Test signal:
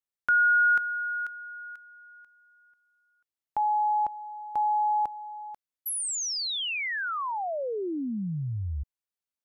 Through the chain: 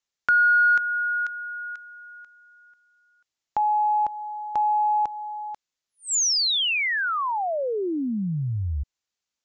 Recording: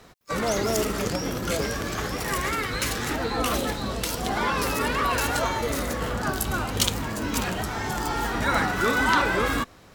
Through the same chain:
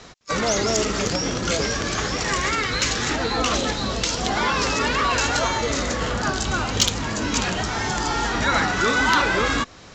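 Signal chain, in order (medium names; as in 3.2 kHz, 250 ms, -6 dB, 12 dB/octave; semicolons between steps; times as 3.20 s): steep low-pass 7.4 kHz 96 dB/octave; treble shelf 2.8 kHz +7.5 dB; in parallel at -0.5 dB: compression, threshold -31 dBFS; on the sum: saturation -5 dBFS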